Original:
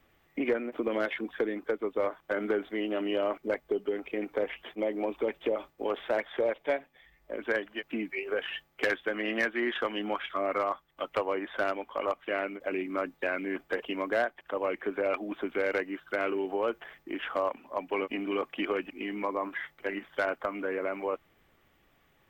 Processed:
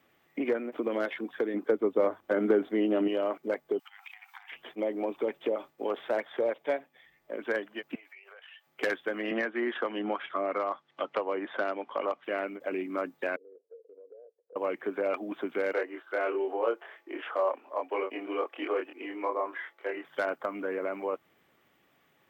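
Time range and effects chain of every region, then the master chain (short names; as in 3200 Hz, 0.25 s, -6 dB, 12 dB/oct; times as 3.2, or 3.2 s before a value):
1.54–3.08 low shelf 500 Hz +9 dB + notches 50/100/150 Hz
3.79–4.52 high shelf 2100 Hz +7.5 dB + compressor 8:1, threshold -37 dBFS + brick-wall FIR high-pass 730 Hz
7.95–8.67 HPF 640 Hz 24 dB/oct + compressor 10:1, threshold -48 dBFS
9.31–12.24 HPF 160 Hz + air absorption 140 m + three-band squash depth 70%
13.36–14.56 Butterworth band-pass 470 Hz, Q 6.1 + compressor 4:1, threshold -49 dBFS
15.73–20.05 HPF 350 Hz 24 dB/oct + high shelf 3900 Hz -10 dB + doubler 26 ms -2 dB
whole clip: HPF 150 Hz 12 dB/oct; dynamic EQ 2500 Hz, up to -4 dB, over -46 dBFS, Q 0.92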